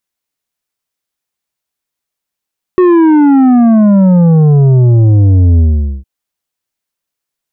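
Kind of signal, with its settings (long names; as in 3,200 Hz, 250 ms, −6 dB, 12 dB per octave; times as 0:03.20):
bass drop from 370 Hz, over 3.26 s, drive 8 dB, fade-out 0.45 s, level −4.5 dB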